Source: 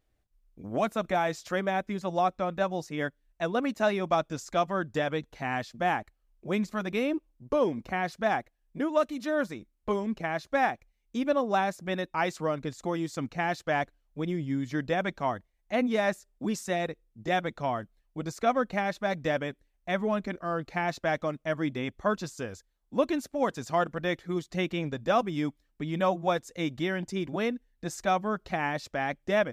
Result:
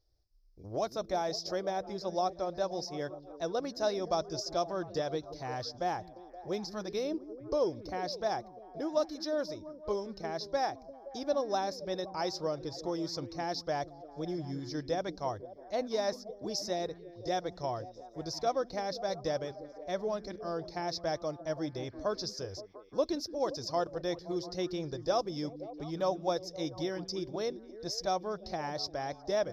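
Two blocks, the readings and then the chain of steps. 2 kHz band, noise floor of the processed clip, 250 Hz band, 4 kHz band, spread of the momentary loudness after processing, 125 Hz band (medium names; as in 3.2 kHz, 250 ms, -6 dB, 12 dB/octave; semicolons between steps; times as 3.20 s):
-13.5 dB, -53 dBFS, -7.5 dB, +1.0 dB, 8 LU, -7.5 dB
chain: FFT filter 100 Hz 0 dB, 240 Hz -15 dB, 340 Hz -3 dB, 520 Hz -3 dB, 940 Hz -7 dB, 1.4 kHz -12 dB, 2.8 kHz -16 dB, 5.2 kHz +14 dB, 7.9 kHz -18 dB, 13 kHz -7 dB; on a send: repeats whose band climbs or falls 174 ms, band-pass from 210 Hz, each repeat 0.7 oct, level -8 dB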